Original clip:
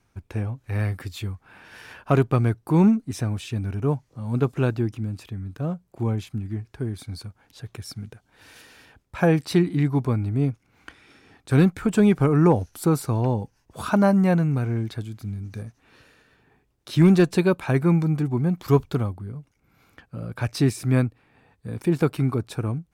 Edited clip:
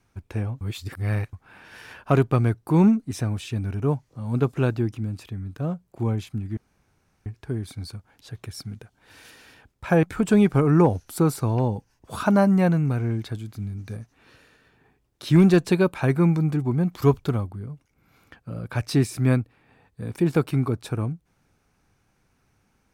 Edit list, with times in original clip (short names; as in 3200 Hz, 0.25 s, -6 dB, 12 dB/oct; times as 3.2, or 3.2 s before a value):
0.61–1.33 reverse
6.57 insert room tone 0.69 s
9.34–11.69 cut